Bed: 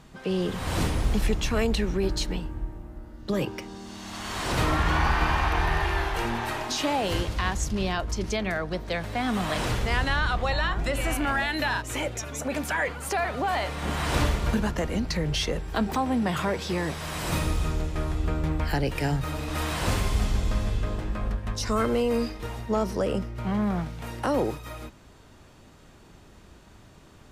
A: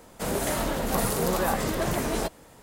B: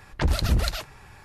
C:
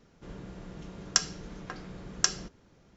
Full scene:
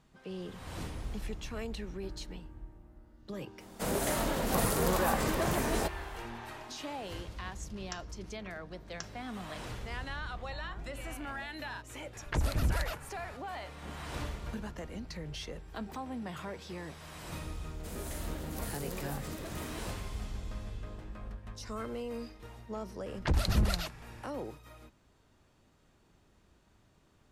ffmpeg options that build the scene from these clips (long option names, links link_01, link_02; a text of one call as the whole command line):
ffmpeg -i bed.wav -i cue0.wav -i cue1.wav -i cue2.wav -filter_complex "[1:a]asplit=2[link_01][link_02];[2:a]asplit=2[link_03][link_04];[0:a]volume=-14.5dB[link_05];[3:a]lowpass=frequency=2900:poles=1[link_06];[link_03]acrossover=split=97|2400|7300[link_07][link_08][link_09][link_10];[link_07]acompressor=threshold=-27dB:ratio=3[link_11];[link_08]acompressor=threshold=-33dB:ratio=3[link_12];[link_09]acompressor=threshold=-50dB:ratio=3[link_13];[link_10]acompressor=threshold=-47dB:ratio=3[link_14];[link_11][link_12][link_13][link_14]amix=inputs=4:normalize=0[link_15];[link_02]equalizer=frequency=880:width=0.69:gain=-6.5[link_16];[link_01]atrim=end=2.62,asetpts=PTS-STARTPTS,volume=-4dB,afade=type=in:duration=0.004:curve=hsin,afade=type=out:start_time=2.616:duration=0.004:curve=hsin,adelay=3600[link_17];[link_06]atrim=end=2.96,asetpts=PTS-STARTPTS,volume=-14dB,afade=type=in:duration=0.004:curve=hsin,afade=type=out:start_time=2.956:duration=0.004:curve=hsin,adelay=6760[link_18];[link_15]atrim=end=1.24,asetpts=PTS-STARTPTS,volume=-2dB,afade=type=in:duration=0.004:curve=hsin,afade=type=out:start_time=1.236:duration=0.004:curve=hsin,adelay=12130[link_19];[link_16]atrim=end=2.62,asetpts=PTS-STARTPTS,volume=-13dB,afade=type=in:duration=0.004:curve=hsin,afade=type=out:start_time=2.616:duration=0.004:curve=hsin,adelay=777924S[link_20];[link_04]atrim=end=1.24,asetpts=PTS-STARTPTS,volume=-5.5dB,afade=type=in:duration=0.004:curve=hsin,afade=type=out:start_time=1.236:duration=0.004:curve=hsin,adelay=23060[link_21];[link_05][link_17][link_18][link_19][link_20][link_21]amix=inputs=6:normalize=0" out.wav